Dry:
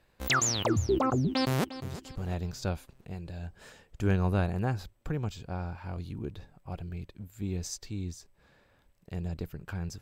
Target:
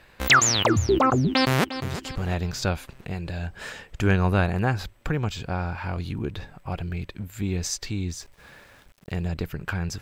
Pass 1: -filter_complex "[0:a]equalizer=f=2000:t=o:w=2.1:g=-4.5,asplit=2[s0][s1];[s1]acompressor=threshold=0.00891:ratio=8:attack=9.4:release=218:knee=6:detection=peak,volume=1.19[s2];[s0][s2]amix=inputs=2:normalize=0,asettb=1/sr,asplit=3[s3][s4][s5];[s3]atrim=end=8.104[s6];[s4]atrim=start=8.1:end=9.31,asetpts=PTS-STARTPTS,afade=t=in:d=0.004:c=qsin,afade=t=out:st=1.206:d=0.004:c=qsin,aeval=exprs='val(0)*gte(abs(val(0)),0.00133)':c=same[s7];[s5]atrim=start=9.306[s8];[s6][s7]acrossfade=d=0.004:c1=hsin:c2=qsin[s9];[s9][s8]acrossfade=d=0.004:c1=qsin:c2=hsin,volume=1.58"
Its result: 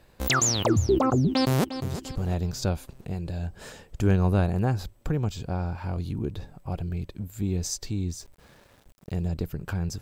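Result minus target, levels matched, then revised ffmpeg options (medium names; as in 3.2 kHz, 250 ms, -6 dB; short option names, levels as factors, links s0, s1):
2 kHz band -7.5 dB
-filter_complex "[0:a]equalizer=f=2000:t=o:w=2.1:g=7,asplit=2[s0][s1];[s1]acompressor=threshold=0.00891:ratio=8:attack=9.4:release=218:knee=6:detection=peak,volume=1.19[s2];[s0][s2]amix=inputs=2:normalize=0,asettb=1/sr,asplit=3[s3][s4][s5];[s3]atrim=end=8.104[s6];[s4]atrim=start=8.1:end=9.31,asetpts=PTS-STARTPTS,afade=t=in:d=0.004:c=qsin,afade=t=out:st=1.206:d=0.004:c=qsin,aeval=exprs='val(0)*gte(abs(val(0)),0.00133)':c=same[s7];[s5]atrim=start=9.306[s8];[s6][s7]acrossfade=d=0.004:c1=hsin:c2=qsin[s9];[s9][s8]acrossfade=d=0.004:c1=qsin:c2=hsin,volume=1.58"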